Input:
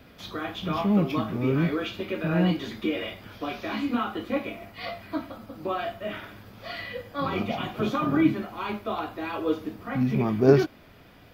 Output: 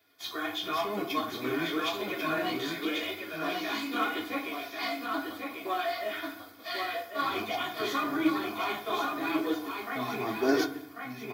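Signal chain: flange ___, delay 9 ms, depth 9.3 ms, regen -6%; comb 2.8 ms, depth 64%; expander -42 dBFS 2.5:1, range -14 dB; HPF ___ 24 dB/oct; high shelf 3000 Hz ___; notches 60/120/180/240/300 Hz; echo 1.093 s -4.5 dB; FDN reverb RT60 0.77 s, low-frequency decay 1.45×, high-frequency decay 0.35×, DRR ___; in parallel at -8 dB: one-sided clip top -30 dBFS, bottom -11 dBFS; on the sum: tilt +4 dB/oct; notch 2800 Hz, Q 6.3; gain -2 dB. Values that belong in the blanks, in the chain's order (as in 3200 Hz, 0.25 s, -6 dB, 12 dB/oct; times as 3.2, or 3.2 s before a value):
0.94 Hz, 81 Hz, -4.5 dB, 10.5 dB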